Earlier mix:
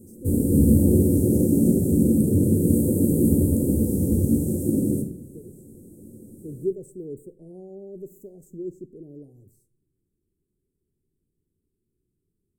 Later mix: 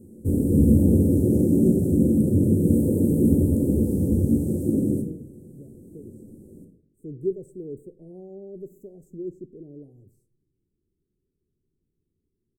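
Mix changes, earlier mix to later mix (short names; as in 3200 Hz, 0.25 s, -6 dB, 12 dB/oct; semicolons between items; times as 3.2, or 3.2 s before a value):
speech: entry +0.60 s; master: add high shelf 3400 Hz -10 dB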